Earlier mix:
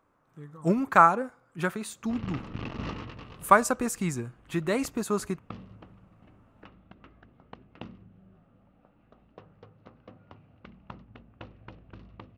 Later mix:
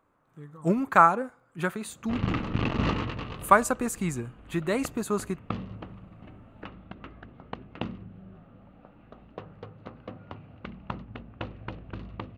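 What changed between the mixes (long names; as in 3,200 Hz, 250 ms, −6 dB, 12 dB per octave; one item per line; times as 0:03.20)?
background +9.0 dB
master: add parametric band 5,400 Hz −7.5 dB 0.25 octaves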